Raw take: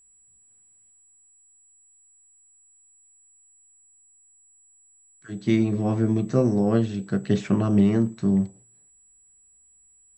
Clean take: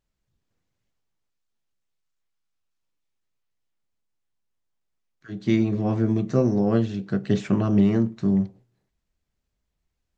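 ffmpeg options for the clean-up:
ffmpeg -i in.wav -af "bandreject=frequency=7800:width=30" out.wav

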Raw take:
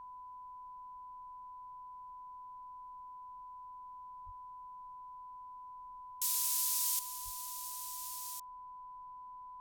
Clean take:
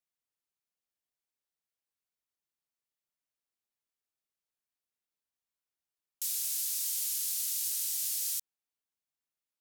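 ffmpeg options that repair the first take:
ffmpeg -i in.wav -filter_complex "[0:a]bandreject=frequency=1000:width=30,asplit=3[link_01][link_02][link_03];[link_01]afade=type=out:start_time=4.25:duration=0.02[link_04];[link_02]highpass=frequency=140:width=0.5412,highpass=frequency=140:width=1.3066,afade=type=in:start_time=4.25:duration=0.02,afade=type=out:start_time=4.37:duration=0.02[link_05];[link_03]afade=type=in:start_time=4.37:duration=0.02[link_06];[link_04][link_05][link_06]amix=inputs=3:normalize=0,asplit=3[link_07][link_08][link_09];[link_07]afade=type=out:start_time=7.24:duration=0.02[link_10];[link_08]highpass=frequency=140:width=0.5412,highpass=frequency=140:width=1.3066,afade=type=in:start_time=7.24:duration=0.02,afade=type=out:start_time=7.36:duration=0.02[link_11];[link_09]afade=type=in:start_time=7.36:duration=0.02[link_12];[link_10][link_11][link_12]amix=inputs=3:normalize=0,agate=range=-21dB:threshold=-42dB,asetnsamples=nb_out_samples=441:pad=0,asendcmd='6.99 volume volume 11dB',volume=0dB" out.wav

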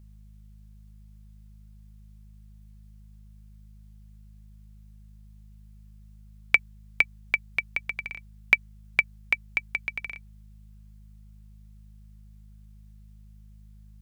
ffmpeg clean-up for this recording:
ffmpeg -i in.wav -af "bandreject=frequency=52:width_type=h:width=4,bandreject=frequency=104:width_type=h:width=4,bandreject=frequency=156:width_type=h:width=4,bandreject=frequency=208:width_type=h:width=4" out.wav

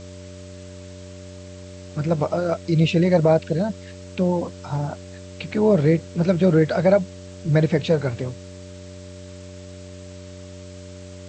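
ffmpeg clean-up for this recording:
ffmpeg -i in.wav -af "bandreject=frequency=91.7:width_type=h:width=4,bandreject=frequency=183.4:width_type=h:width=4,bandreject=frequency=275.1:width_type=h:width=4,bandreject=frequency=366.8:width_type=h:width=4,bandreject=frequency=458.5:width_type=h:width=4,bandreject=frequency=590:width=30,afftdn=noise_reduction=26:noise_floor=-39" out.wav

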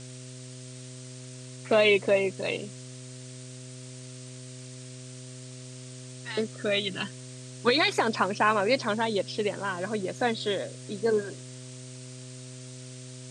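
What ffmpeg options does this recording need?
ffmpeg -i in.wav -af "bandreject=frequency=127.1:width_type=h:width=4,bandreject=frequency=254.2:width_type=h:width=4,bandreject=frequency=381.3:width_type=h:width=4,bandreject=frequency=508.4:width_type=h:width=4,bandreject=frequency=635.5:width_type=h:width=4,afftdn=noise_reduction=29:noise_floor=-43" out.wav

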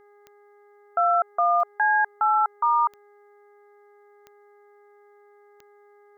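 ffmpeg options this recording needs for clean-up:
ffmpeg -i in.wav -af "adeclick=threshold=4,bandreject=frequency=410.8:width_type=h:width=4,bandreject=frequency=821.6:width_type=h:width=4,bandreject=frequency=1232.4:width_type=h:width=4,bandreject=frequency=1643.2:width_type=h:width=4,bandreject=frequency=2054:width_type=h:width=4,agate=range=-21dB:threshold=-47dB" out.wav

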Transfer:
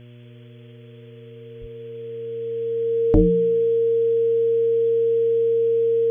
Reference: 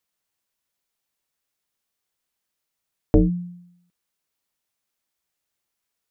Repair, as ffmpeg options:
ffmpeg -i in.wav -filter_complex "[0:a]bandreject=frequency=120.2:width_type=h:width=4,bandreject=frequency=240.4:width_type=h:width=4,bandreject=frequency=360.6:width_type=h:width=4,bandreject=frequency=480.8:width_type=h:width=4,bandreject=frequency=601:width_type=h:width=4,bandreject=frequency=460:width=30,asplit=3[link_01][link_02][link_03];[link_01]afade=type=out:start_time=1.6:duration=0.02[link_04];[link_02]highpass=frequency=140:width=0.5412,highpass=frequency=140:width=1.3066,afade=type=in:start_time=1.6:duration=0.02,afade=type=out:start_time=1.72:duration=0.02[link_05];[link_03]afade=type=in:start_time=1.72:duration=0.02[link_06];[link_04][link_05][link_06]amix=inputs=3:normalize=0,afftdn=noise_reduction=30:noise_floor=-43" out.wav

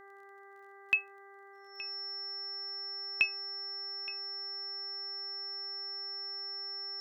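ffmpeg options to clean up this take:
ffmpeg -i in.wav -af "adeclick=threshold=4,bandreject=frequency=395.8:width_type=h:width=4,bandreject=frequency=791.6:width_type=h:width=4,bandreject=frequency=1187.4:width_type=h:width=4,bandreject=frequency=1583.2:width_type=h:width=4,bandreject=frequency=1979:width_type=h:width=4,bandreject=frequency=5400:width=30,agate=range=-21dB:threshold=-46dB" out.wav

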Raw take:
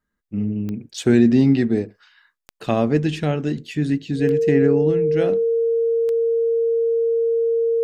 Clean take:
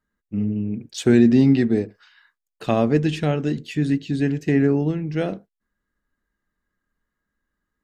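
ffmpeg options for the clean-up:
ffmpeg -i in.wav -af "adeclick=threshold=4,bandreject=frequency=460:width=30" out.wav

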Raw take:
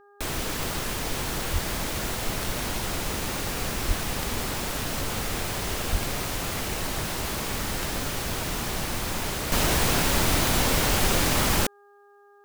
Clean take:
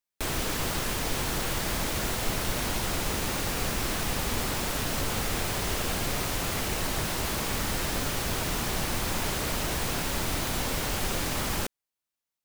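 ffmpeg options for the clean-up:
ffmpeg -i in.wav -filter_complex "[0:a]adeclick=threshold=4,bandreject=frequency=406.1:width_type=h:width=4,bandreject=frequency=812.2:width_type=h:width=4,bandreject=frequency=1218.3:width_type=h:width=4,bandreject=frequency=1624.4:width_type=h:width=4,asplit=3[link_01][link_02][link_03];[link_01]afade=type=out:start_time=1.52:duration=0.02[link_04];[link_02]highpass=frequency=140:width=0.5412,highpass=frequency=140:width=1.3066,afade=type=in:start_time=1.52:duration=0.02,afade=type=out:start_time=1.64:duration=0.02[link_05];[link_03]afade=type=in:start_time=1.64:duration=0.02[link_06];[link_04][link_05][link_06]amix=inputs=3:normalize=0,asplit=3[link_07][link_08][link_09];[link_07]afade=type=out:start_time=3.87:duration=0.02[link_10];[link_08]highpass=frequency=140:width=0.5412,highpass=frequency=140:width=1.3066,afade=type=in:start_time=3.87:duration=0.02,afade=type=out:start_time=3.99:duration=0.02[link_11];[link_09]afade=type=in:start_time=3.99:duration=0.02[link_12];[link_10][link_11][link_12]amix=inputs=3:normalize=0,asplit=3[link_13][link_14][link_15];[link_13]afade=type=out:start_time=5.91:duration=0.02[link_16];[link_14]highpass=frequency=140:width=0.5412,highpass=frequency=140:width=1.3066,afade=type=in:start_time=5.91:duration=0.02,afade=type=out:start_time=6.03:duration=0.02[link_17];[link_15]afade=type=in:start_time=6.03:duration=0.02[link_18];[link_16][link_17][link_18]amix=inputs=3:normalize=0,asetnsamples=nb_out_samples=441:pad=0,asendcmd='9.52 volume volume -7dB',volume=0dB" out.wav

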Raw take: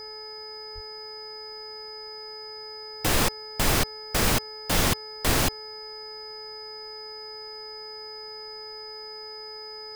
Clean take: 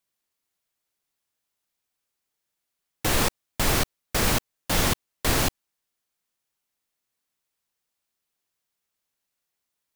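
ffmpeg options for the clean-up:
ffmpeg -i in.wav -filter_complex "[0:a]bandreject=frequency=431.6:width_type=h:width=4,bandreject=frequency=863.2:width_type=h:width=4,bandreject=frequency=1294.8:width_type=h:width=4,bandreject=frequency=1726.4:width_type=h:width=4,bandreject=frequency=2158:width_type=h:width=4,bandreject=frequency=5000:width=30,asplit=3[link_01][link_02][link_03];[link_01]afade=type=out:start_time=0.74:duration=0.02[link_04];[link_02]highpass=frequency=140:width=0.5412,highpass=frequency=140:width=1.3066,afade=type=in:start_time=0.74:duration=0.02,afade=type=out:start_time=0.86:duration=0.02[link_05];[link_03]afade=type=in:start_time=0.86:duration=0.02[link_06];[link_04][link_05][link_06]amix=inputs=3:normalize=0,agate=range=-21dB:threshold=-32dB" out.wav

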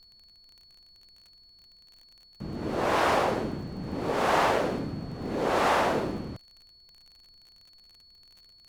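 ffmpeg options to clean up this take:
ffmpeg -i in.wav -af "adeclick=threshold=4,bandreject=frequency=4400:width=30,agate=range=-21dB:threshold=-49dB" out.wav

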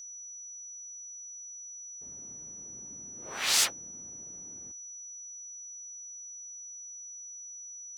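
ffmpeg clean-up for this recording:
ffmpeg -i in.wav -af "bandreject=frequency=5900:width=30" out.wav

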